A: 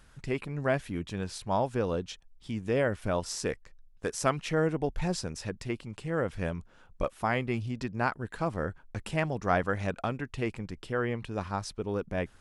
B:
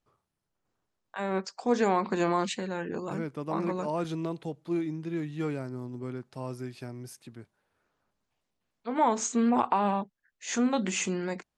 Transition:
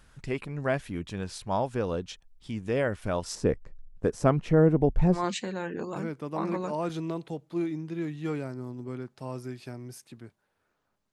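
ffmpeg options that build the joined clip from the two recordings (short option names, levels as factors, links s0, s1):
-filter_complex "[0:a]asettb=1/sr,asplit=3[s0][s1][s2];[s0]atrim=end=3.354[s3];[s1]atrim=start=3.35:end=5.25,asetpts=PTS-STARTPTS,afade=t=in:d=0.004:c=qsin,afade=t=out:st=1.896:d=0.004:c=qsin,tiltshelf=f=1100:g=9.5[s4];[s2]atrim=start=5.246[s5];[s3][s4]acrossfade=d=0.004:c1=hsin:c2=qsin[s6];[s6][s5]acrossfade=d=0.004:c1=qsin:c2=hsin,apad=whole_dur=11.12,atrim=end=11.12,atrim=end=5.25,asetpts=PTS-STARTPTS[s7];[1:a]atrim=start=2.26:end=8.27,asetpts=PTS-STARTPTS[s8];[s7][s8]acrossfade=d=0.14:c1=tri:c2=tri"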